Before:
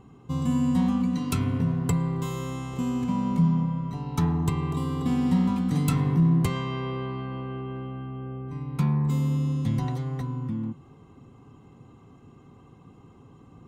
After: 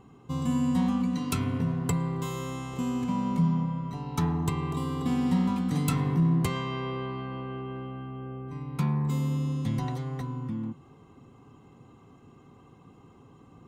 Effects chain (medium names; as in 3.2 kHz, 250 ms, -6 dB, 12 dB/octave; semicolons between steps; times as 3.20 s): bass shelf 220 Hz -5 dB